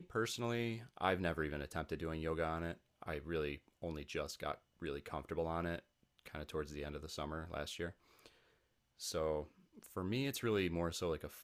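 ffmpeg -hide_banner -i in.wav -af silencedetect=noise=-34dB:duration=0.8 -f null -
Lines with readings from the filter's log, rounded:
silence_start: 7.86
silence_end: 9.06 | silence_duration: 1.19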